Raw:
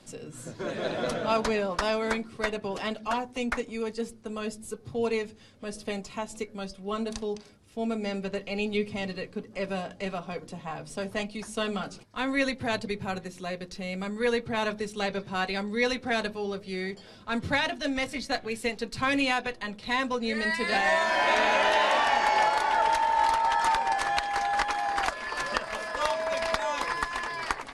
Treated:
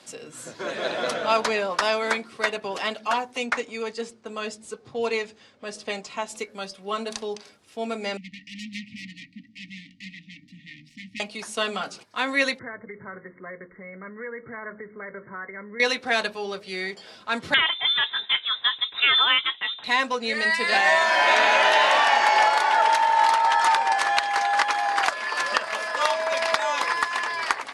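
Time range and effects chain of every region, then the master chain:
3.46–6.28 LPF 8800 Hz 24 dB/oct + mismatched tape noise reduction decoder only
8.17–11.2 self-modulated delay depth 0.63 ms + brick-wall FIR band-stop 310–1800 Hz + tape spacing loss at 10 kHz 25 dB
12.59–15.8 bell 780 Hz -15 dB 0.45 oct + compressor 4:1, threshold -35 dBFS + brick-wall FIR low-pass 2200 Hz
17.54–19.84 HPF 65 Hz + inverted band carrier 3800 Hz
whole clip: HPF 790 Hz 6 dB/oct; high shelf 10000 Hz -6.5 dB; gain +7.5 dB

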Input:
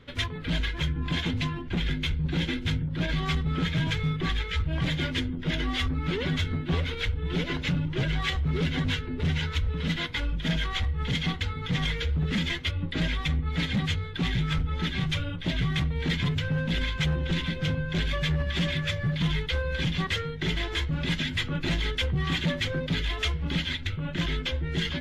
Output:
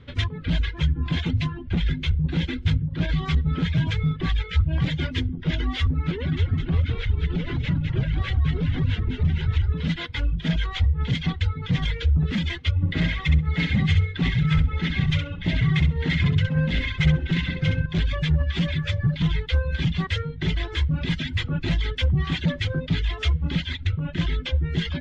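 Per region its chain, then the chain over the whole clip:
6.11–9.73 tone controls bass +3 dB, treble -6 dB + compressor 2:1, threshold -28 dBFS + frequency-shifting echo 0.206 s, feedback 37%, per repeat -48 Hz, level -5 dB
12.76–17.86 bell 2200 Hz +11.5 dB 0.33 oct + notch 2300 Hz, Q 7.4 + feedback echo 65 ms, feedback 36%, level -4.5 dB
whole clip: LPF 5900 Hz 12 dB/oct; reverb removal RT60 0.68 s; bell 84 Hz +10 dB 2 oct

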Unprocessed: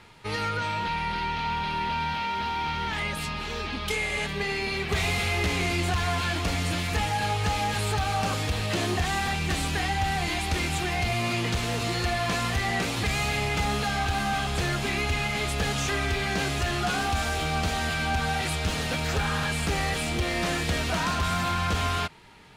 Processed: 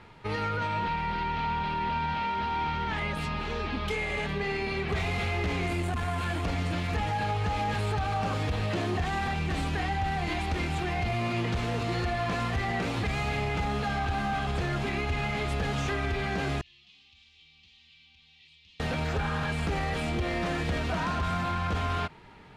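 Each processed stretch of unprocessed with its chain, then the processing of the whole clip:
5.67–6.45 resonant high shelf 6900 Hz +7 dB, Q 1.5 + core saturation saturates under 170 Hz
16.61–18.8 inverse Chebyshev high-pass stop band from 1600 Hz + tape spacing loss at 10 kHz 42 dB
whole clip: LPF 1700 Hz 6 dB/oct; limiter -24 dBFS; gain +2 dB

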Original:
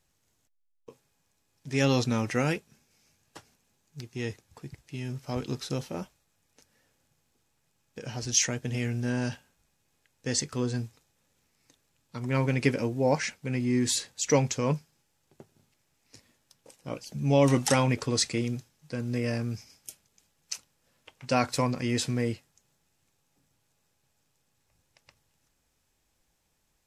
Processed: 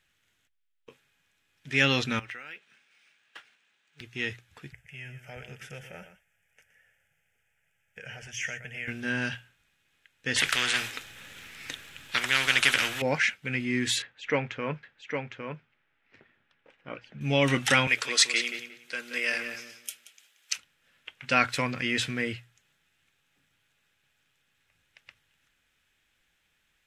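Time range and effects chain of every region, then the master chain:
2.19–4.01 weighting filter A + compressor 10:1, threshold -43 dBFS + decimation joined by straight lines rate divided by 3×
4.72–8.88 compressor 1.5:1, threshold -40 dBFS + fixed phaser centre 1100 Hz, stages 6 + echo 0.119 s -11 dB
10.36–13.02 notches 60/120/180 Hz + spectral compressor 4:1
14.02–17.21 LPF 1900 Hz + bell 97 Hz -6 dB 2.6 oct + echo 0.808 s -5.5 dB
17.87–20.53 HPF 470 Hz + high shelf 3300 Hz +9.5 dB + darkening echo 0.179 s, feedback 24%, low-pass 3400 Hz, level -8 dB
whole clip: band shelf 2200 Hz +13 dB; notches 60/120 Hz; gain -3.5 dB

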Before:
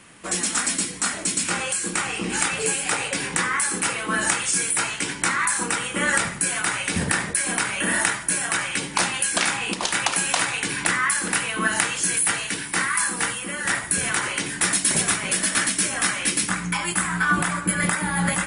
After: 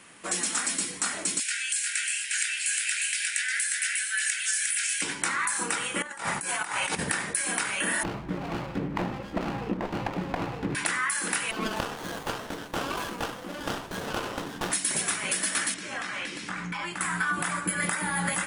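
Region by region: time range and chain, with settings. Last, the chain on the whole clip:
1.4–5.02 steep high-pass 1500 Hz 96 dB/oct + echo 0.356 s -3.5 dB
6.02–6.99 bell 890 Hz +9.5 dB 0.83 oct + negative-ratio compressor -27 dBFS, ratio -0.5
8.03–10.75 LPF 1700 Hz + tilt -4.5 dB/oct + running maximum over 17 samples
11.51–14.72 Bessel low-pass 4900 Hz + running maximum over 17 samples
15.74–17.01 compressor 10:1, threshold -24 dBFS + air absorption 120 m
whole clip: low shelf 150 Hz -11 dB; compressor, threshold -22 dBFS; gain -2 dB

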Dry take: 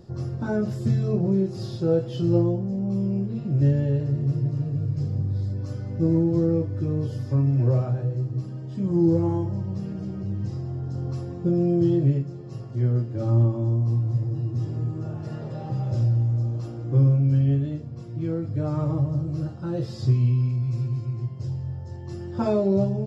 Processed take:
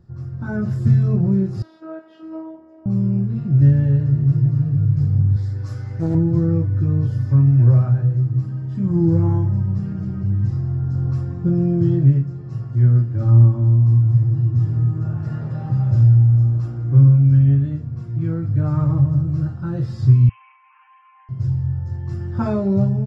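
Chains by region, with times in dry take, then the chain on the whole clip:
1.62–2.86 three-band isolator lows -21 dB, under 420 Hz, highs -18 dB, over 2700 Hz + robotiser 320 Hz + HPF 190 Hz
5.36–6.15 tilt +2.5 dB/oct + doubler 18 ms -3.5 dB + Doppler distortion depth 0.37 ms
20.29–21.29 brick-wall FIR band-pass 760–3200 Hz + comb 7.5 ms, depth 90%
whole clip: EQ curve 110 Hz 0 dB, 510 Hz -15 dB, 1500 Hz -3 dB, 3100 Hz -14 dB; AGC gain up to 10.5 dB

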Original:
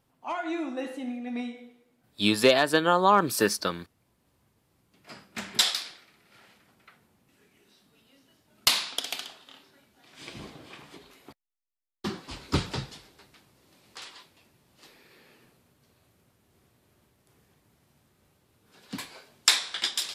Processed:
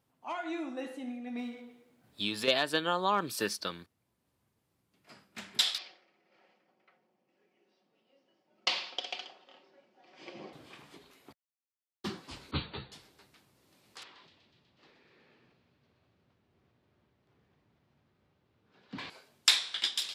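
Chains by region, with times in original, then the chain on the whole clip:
1.38–2.48 G.711 law mismatch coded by mu + high shelf 5200 Hz -4 dB + compressor 2:1, threshold -28 dBFS
5.78–10.53 speaker cabinet 220–5100 Hz, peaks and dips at 330 Hz +5 dB, 530 Hz +8 dB, 750 Hz +6 dB, 1500 Hz -4 dB, 3800 Hz -9 dB + comb 5.4 ms, depth 39%
12.51–12.92 brick-wall FIR low-pass 4600 Hz + ensemble effect
14.03–19.1 air absorption 220 m + thin delay 0.123 s, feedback 75%, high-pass 2900 Hz, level -7.5 dB + sustainer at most 51 dB/s
whole clip: HPF 60 Hz; dynamic EQ 3300 Hz, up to +7 dB, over -42 dBFS, Q 1.1; vocal rider within 3 dB 2 s; gain -8.5 dB

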